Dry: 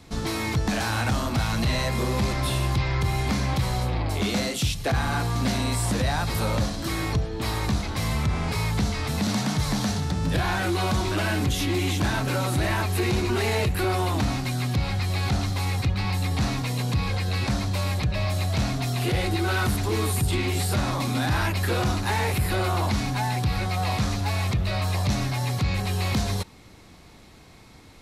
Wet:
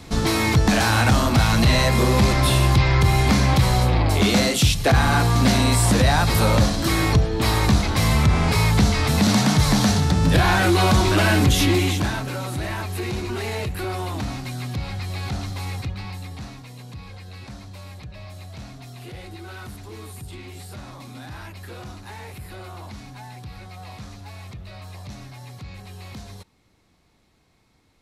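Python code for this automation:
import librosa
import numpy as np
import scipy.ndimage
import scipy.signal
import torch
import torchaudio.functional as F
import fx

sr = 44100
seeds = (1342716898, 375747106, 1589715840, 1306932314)

y = fx.gain(x, sr, db=fx.line((11.67, 7.5), (12.31, -3.5), (15.74, -3.5), (16.63, -13.5)))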